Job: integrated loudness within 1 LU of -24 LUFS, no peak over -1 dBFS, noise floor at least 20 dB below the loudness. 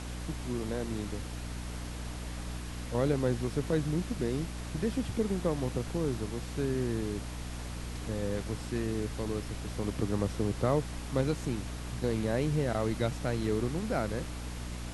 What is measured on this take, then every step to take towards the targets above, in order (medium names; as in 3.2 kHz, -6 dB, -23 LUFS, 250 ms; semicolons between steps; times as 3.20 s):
hum 60 Hz; highest harmonic 300 Hz; hum level -37 dBFS; noise floor -40 dBFS; noise floor target -54 dBFS; loudness -33.5 LUFS; peak level -14.5 dBFS; loudness target -24.0 LUFS
-> hum notches 60/120/180/240/300 Hz; noise print and reduce 14 dB; trim +9.5 dB